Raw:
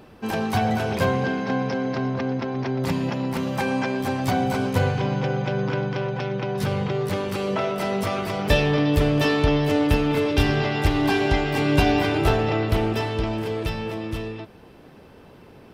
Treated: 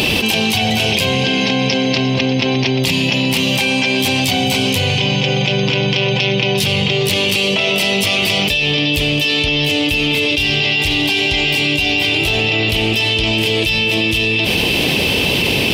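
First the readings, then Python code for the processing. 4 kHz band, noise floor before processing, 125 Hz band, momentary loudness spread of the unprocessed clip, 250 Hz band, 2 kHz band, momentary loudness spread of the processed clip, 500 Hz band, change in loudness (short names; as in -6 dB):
+20.0 dB, -48 dBFS, +4.5 dB, 7 LU, +5.0 dB, +13.5 dB, 2 LU, +4.5 dB, +9.0 dB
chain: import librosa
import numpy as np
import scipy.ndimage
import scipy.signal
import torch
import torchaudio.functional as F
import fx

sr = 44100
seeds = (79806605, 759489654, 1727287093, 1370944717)

y = scipy.signal.sosfilt(scipy.signal.butter(2, 40.0, 'highpass', fs=sr, output='sos'), x)
y = fx.high_shelf_res(y, sr, hz=2000.0, db=11.5, q=3.0)
y = fx.env_flatten(y, sr, amount_pct=100)
y = F.gain(torch.from_numpy(y), -8.5).numpy()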